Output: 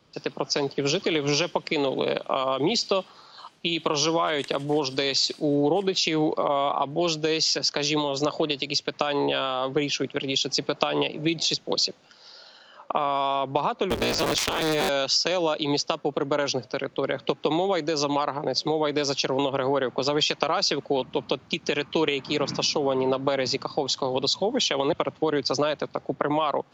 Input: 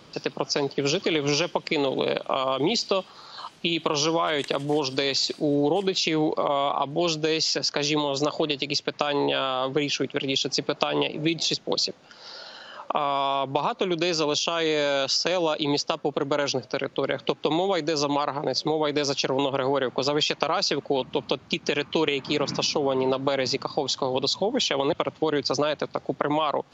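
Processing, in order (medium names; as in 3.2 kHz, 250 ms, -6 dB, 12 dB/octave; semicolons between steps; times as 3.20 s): 13.90–14.89 s: cycle switcher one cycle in 3, inverted; three bands expanded up and down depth 40%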